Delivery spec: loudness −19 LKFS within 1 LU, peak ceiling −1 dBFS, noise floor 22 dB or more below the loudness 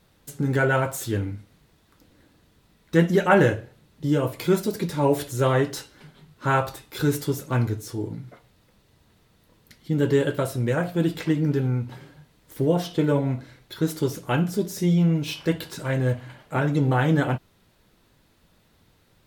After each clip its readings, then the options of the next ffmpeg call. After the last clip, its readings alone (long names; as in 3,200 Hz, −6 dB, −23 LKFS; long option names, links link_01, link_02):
integrated loudness −24.0 LKFS; sample peak −5.0 dBFS; target loudness −19.0 LKFS
→ -af "volume=5dB,alimiter=limit=-1dB:level=0:latency=1"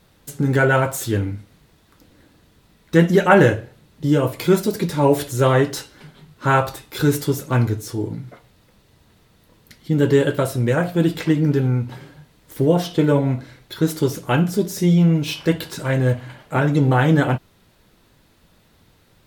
integrated loudness −19.0 LKFS; sample peak −1.0 dBFS; background noise floor −57 dBFS